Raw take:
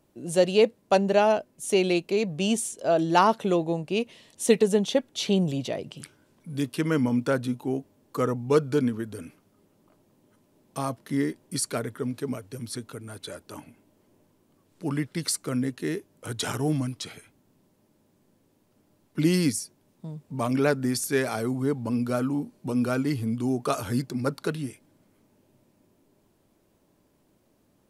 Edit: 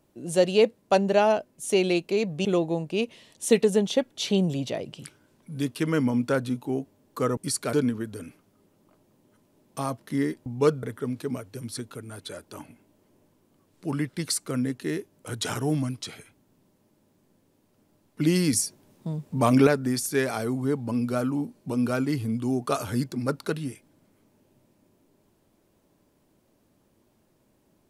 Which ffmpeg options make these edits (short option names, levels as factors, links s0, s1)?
-filter_complex "[0:a]asplit=8[s0][s1][s2][s3][s4][s5][s6][s7];[s0]atrim=end=2.452[s8];[s1]atrim=start=3.428:end=8.352[s9];[s2]atrim=start=11.448:end=11.812[s10];[s3]atrim=start=8.718:end=11.452[s11];[s4]atrim=start=8.348:end=8.722[s12];[s5]atrim=start=11.808:end=19.512[s13];[s6]atrim=start=19.508:end=20.652,asetpts=PTS-STARTPTS,volume=2.11[s14];[s7]atrim=start=20.648[s15];[s8][s9]acrossfade=d=0.004:c1=hsin:c2=hsin[s16];[s16][s10]acrossfade=d=0.004:c1=hsin:c2=hsin[s17];[s17][s11]acrossfade=d=0.004:c1=hsin:c2=hsin[s18];[s18][s12]acrossfade=d=0.004:c1=hsin:c2=hsin[s19];[s19][s13]acrossfade=d=0.004:c1=hsin:c2=hsin[s20];[s20][s14]acrossfade=d=0.004:c1=hsin:c2=hsin[s21];[s21][s15]acrossfade=d=0.004:c1=hsin:c2=hsin"